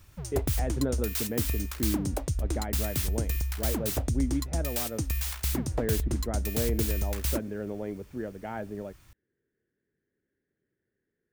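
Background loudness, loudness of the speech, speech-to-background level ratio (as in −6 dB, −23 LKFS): −31.0 LKFS, −35.5 LKFS, −4.5 dB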